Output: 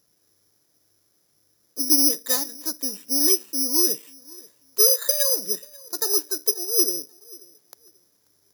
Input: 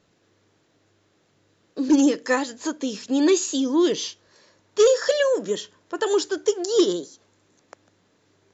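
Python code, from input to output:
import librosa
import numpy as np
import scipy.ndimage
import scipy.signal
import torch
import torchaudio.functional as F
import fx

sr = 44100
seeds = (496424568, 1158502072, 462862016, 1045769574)

p1 = fx.highpass(x, sr, hz=240.0, slope=12, at=(6.51, 6.97))
p2 = p1 + fx.echo_feedback(p1, sr, ms=536, feedback_pct=25, wet_db=-23.5, dry=0)
p3 = (np.kron(scipy.signal.resample_poly(p2, 1, 8), np.eye(8)[0]) * 8)[:len(p2)]
y = p3 * 10.0 ** (-10.0 / 20.0)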